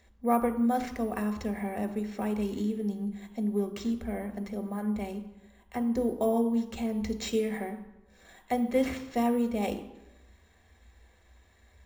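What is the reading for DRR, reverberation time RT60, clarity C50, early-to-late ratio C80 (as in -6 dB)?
7.0 dB, 1.0 s, 11.5 dB, 13.5 dB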